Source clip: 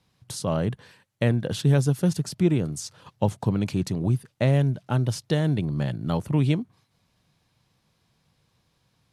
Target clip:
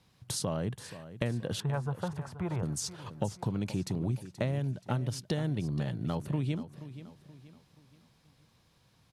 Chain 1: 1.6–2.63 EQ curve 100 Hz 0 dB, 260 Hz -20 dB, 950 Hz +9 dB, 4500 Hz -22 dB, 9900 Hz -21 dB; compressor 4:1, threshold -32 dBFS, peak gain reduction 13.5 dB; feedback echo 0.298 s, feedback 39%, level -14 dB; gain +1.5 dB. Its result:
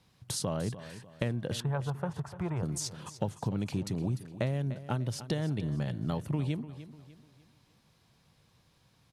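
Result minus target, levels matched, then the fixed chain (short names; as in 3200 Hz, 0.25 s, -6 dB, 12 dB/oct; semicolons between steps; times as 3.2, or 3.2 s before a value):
echo 0.18 s early
1.6–2.63 EQ curve 100 Hz 0 dB, 260 Hz -20 dB, 950 Hz +9 dB, 4500 Hz -22 dB, 9900 Hz -21 dB; compressor 4:1, threshold -32 dBFS, peak gain reduction 13.5 dB; feedback echo 0.478 s, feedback 39%, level -14 dB; gain +1.5 dB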